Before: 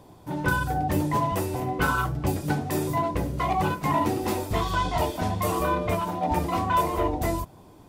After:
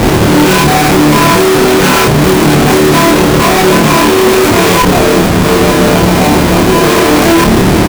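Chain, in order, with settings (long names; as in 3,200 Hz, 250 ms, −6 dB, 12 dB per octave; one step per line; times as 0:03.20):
high-pass filter 65 Hz 12 dB per octave
low-shelf EQ 140 Hz −9.5 dB
hum removal 221.7 Hz, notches 2
downward compressor, threshold −32 dBFS, peak gain reduction 12.5 dB
fuzz pedal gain 56 dB, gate −57 dBFS
0:04.82–0:06.84: tube saturation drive 16 dB, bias 0.6
hollow resonant body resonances 220/370/2,400 Hz, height 9 dB, ringing for 25 ms
comparator with hysteresis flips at −14.5 dBFS
double-tracking delay 27 ms −2 dB
level +1.5 dB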